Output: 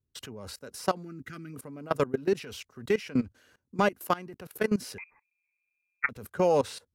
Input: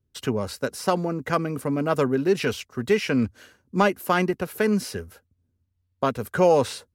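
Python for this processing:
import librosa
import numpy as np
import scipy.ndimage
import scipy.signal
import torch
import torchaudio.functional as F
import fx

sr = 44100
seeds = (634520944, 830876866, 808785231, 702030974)

y = fx.spec_box(x, sr, start_s=1.03, length_s=0.51, low_hz=400.0, high_hz=1200.0, gain_db=-17)
y = fx.level_steps(y, sr, step_db=20)
y = fx.freq_invert(y, sr, carrier_hz=2500, at=(4.98, 6.09))
y = F.gain(torch.from_numpy(y), -2.0).numpy()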